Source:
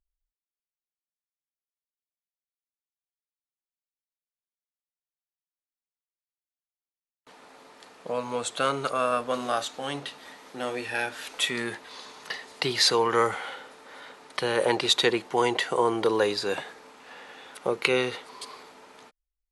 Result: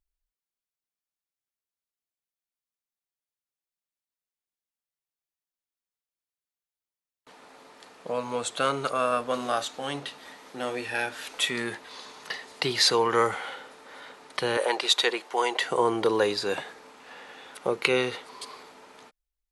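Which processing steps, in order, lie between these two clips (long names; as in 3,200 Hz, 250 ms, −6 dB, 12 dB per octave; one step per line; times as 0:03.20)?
0:14.57–0:15.61: high-pass filter 490 Hz 12 dB per octave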